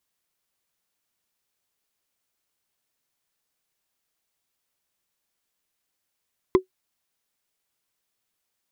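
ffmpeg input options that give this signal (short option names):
-f lavfi -i "aevalsrc='0.398*pow(10,-3*t/0.11)*sin(2*PI*373*t)+0.178*pow(10,-3*t/0.033)*sin(2*PI*1028.4*t)+0.0794*pow(10,-3*t/0.015)*sin(2*PI*2015.7*t)+0.0355*pow(10,-3*t/0.008)*sin(2*PI*3332*t)+0.0158*pow(10,-3*t/0.005)*sin(2*PI*4975.8*t)':d=0.45:s=44100"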